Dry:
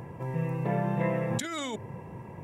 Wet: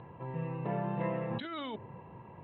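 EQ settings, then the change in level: dynamic EQ 270 Hz, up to +4 dB, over -41 dBFS, Q 0.87; rippled Chebyshev low-pass 4100 Hz, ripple 6 dB; -3.0 dB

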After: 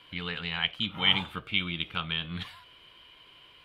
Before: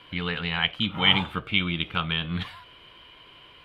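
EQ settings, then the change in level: high shelf 3100 Hz +8.5 dB; -7.5 dB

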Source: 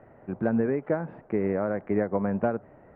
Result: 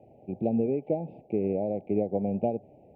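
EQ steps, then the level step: HPF 57 Hz; Chebyshev band-stop 810–2400 Hz, order 4; -1.0 dB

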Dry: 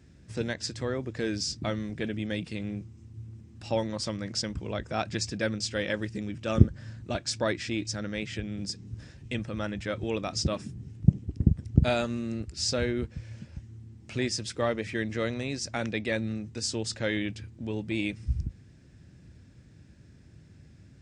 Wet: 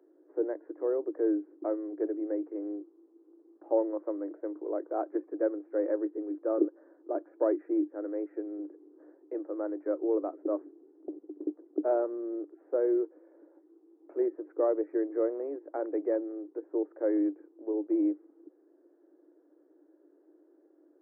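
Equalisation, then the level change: Gaussian blur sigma 8.7 samples; Chebyshev high-pass 300 Hz, order 8; low shelf 470 Hz +11 dB; 0.0 dB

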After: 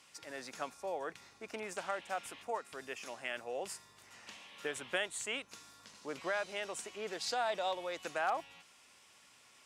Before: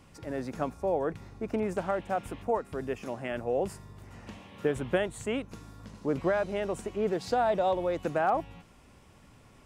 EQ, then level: band-pass 5700 Hz, Q 0.56; +5.0 dB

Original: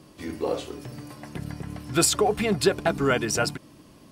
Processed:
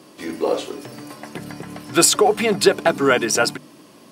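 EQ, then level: HPF 220 Hz 12 dB/oct; notches 50/100/150/200/250/300 Hz; +7.0 dB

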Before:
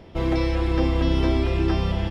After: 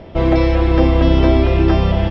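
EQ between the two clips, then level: air absorption 130 m; bell 620 Hz +6.5 dB 0.33 oct; +8.5 dB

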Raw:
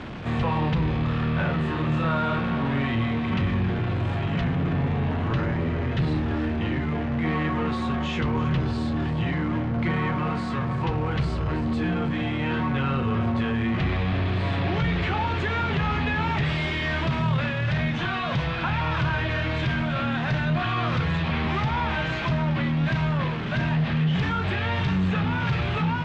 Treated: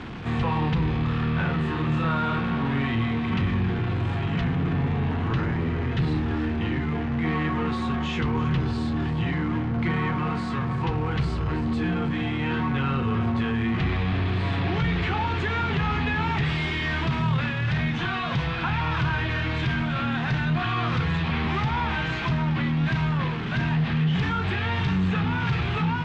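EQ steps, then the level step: bell 590 Hz -11.5 dB 0.2 oct; 0.0 dB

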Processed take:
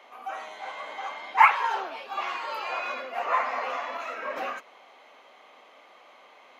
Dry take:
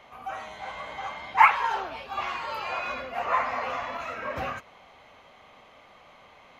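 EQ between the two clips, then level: HPF 280 Hz 24 dB/oct; 0.0 dB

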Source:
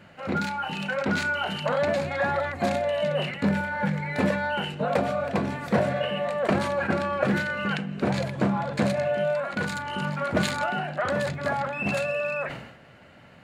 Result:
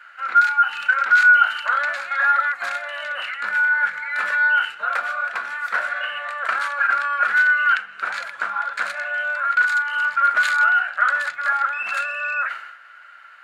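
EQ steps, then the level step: resonant high-pass 1400 Hz, resonance Q 6.9; 0.0 dB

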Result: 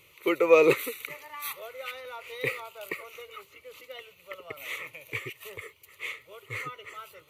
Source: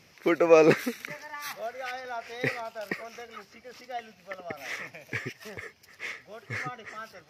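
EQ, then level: high shelf 3500 Hz +11 dB; fixed phaser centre 1100 Hz, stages 8; 0.0 dB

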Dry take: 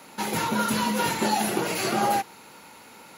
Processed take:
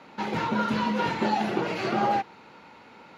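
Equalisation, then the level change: air absorption 220 m; 0.0 dB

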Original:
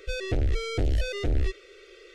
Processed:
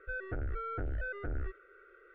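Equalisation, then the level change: ladder low-pass 1500 Hz, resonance 85%; +1.0 dB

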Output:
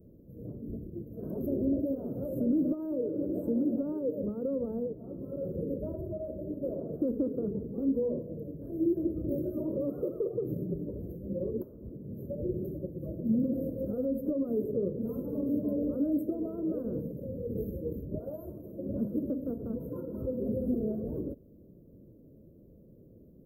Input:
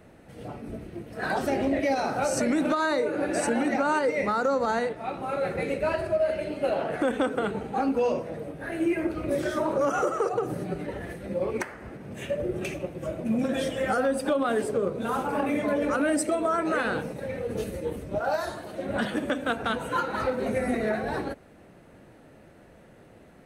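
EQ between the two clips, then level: inverse Chebyshev band-stop 1900–5800 Hz, stop band 70 dB; high shelf 8000 Hz +6.5 dB; fixed phaser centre 2900 Hz, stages 6; 0.0 dB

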